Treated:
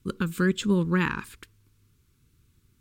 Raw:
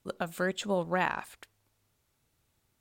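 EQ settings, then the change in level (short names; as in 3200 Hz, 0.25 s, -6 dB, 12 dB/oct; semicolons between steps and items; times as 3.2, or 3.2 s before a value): Butterworth band-stop 680 Hz, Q 1; low shelf 350 Hz +11 dB; notch 1900 Hz, Q 16; +4.0 dB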